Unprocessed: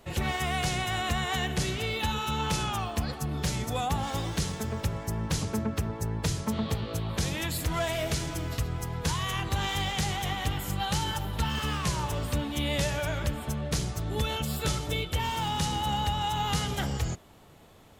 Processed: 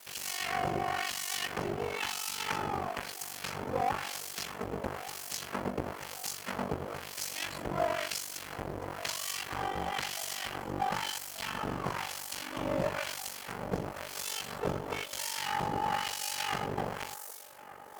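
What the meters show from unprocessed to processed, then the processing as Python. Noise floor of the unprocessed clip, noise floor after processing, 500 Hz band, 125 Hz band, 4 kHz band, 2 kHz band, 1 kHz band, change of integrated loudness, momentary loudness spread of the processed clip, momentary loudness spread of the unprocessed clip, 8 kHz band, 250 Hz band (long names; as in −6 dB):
−43 dBFS, −45 dBFS, −1.5 dB, −14.0 dB, −5.5 dB, −3.0 dB, −2.5 dB, −5.0 dB, 7 LU, 4 LU, −2.0 dB, −8.0 dB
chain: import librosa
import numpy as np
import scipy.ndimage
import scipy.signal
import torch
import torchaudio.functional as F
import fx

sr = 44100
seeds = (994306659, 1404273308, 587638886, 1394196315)

p1 = fx.halfwave_hold(x, sr)
p2 = fx.notch(p1, sr, hz=3700.0, q=11.0)
p3 = fx.dmg_noise_colour(p2, sr, seeds[0], colour='violet', level_db=-39.0)
p4 = fx.filter_lfo_bandpass(p3, sr, shape='sine', hz=1.0, low_hz=510.0, high_hz=6500.0, q=0.88)
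p5 = fx.high_shelf(p4, sr, hz=10000.0, db=8.5)
p6 = fx.quant_float(p5, sr, bits=2)
p7 = p5 + (p6 * librosa.db_to_amplitude(-5.5))
p8 = p7 * np.sin(2.0 * np.pi * 24.0 * np.arange(len(p7)) / sr)
p9 = fx.echo_wet_bandpass(p8, sr, ms=1186, feedback_pct=61, hz=930.0, wet_db=-15.5)
y = p9 * librosa.db_to_amplitude(-3.0)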